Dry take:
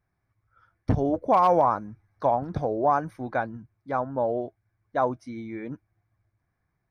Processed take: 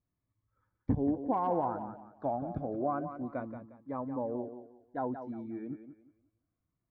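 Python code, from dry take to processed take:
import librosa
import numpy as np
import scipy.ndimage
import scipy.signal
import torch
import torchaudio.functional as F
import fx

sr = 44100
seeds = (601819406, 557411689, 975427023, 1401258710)

p1 = scipy.signal.sosfilt(scipy.signal.butter(2, 1600.0, 'lowpass', fs=sr, output='sos'), x)
p2 = fx.peak_eq(p1, sr, hz=270.0, db=7.5, octaves=0.62)
p3 = p2 + fx.echo_thinned(p2, sr, ms=178, feedback_pct=31, hz=180.0, wet_db=-9.0, dry=0)
p4 = fx.notch_cascade(p3, sr, direction='falling', hz=0.29)
y = F.gain(torch.from_numpy(p4), -9.0).numpy()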